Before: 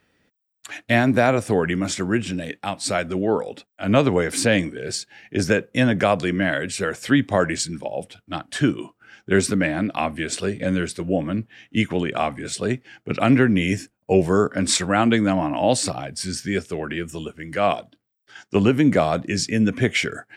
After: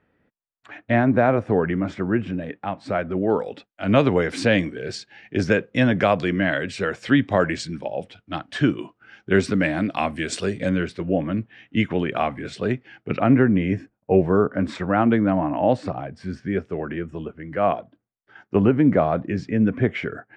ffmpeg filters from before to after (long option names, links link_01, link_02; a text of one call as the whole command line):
ffmpeg -i in.wav -af "asetnsamples=nb_out_samples=441:pad=0,asendcmd='3.3 lowpass f 3900;9.55 lowpass f 7400;10.69 lowpass f 3000;13.2 lowpass f 1500',lowpass=1600" out.wav